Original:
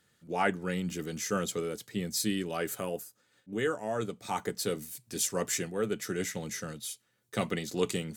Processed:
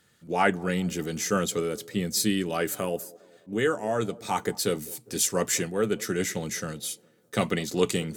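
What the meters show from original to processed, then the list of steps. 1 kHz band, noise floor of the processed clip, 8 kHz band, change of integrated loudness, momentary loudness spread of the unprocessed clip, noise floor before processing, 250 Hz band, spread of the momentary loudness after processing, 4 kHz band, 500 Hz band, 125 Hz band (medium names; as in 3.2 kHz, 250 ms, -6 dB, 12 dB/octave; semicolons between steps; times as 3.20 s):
+5.5 dB, -63 dBFS, +5.5 dB, +5.5 dB, 8 LU, -73 dBFS, +5.5 dB, 8 LU, +5.5 dB, +5.5 dB, +5.5 dB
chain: feedback echo behind a band-pass 203 ms, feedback 49%, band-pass 430 Hz, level -20 dB; trim +5.5 dB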